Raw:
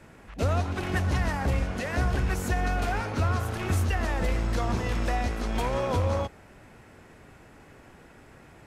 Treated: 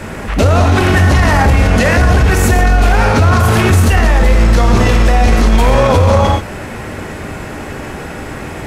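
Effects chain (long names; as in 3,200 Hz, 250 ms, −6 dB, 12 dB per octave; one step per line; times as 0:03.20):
reverb whose tail is shaped and stops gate 160 ms flat, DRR 4 dB
boost into a limiter +26 dB
level −1 dB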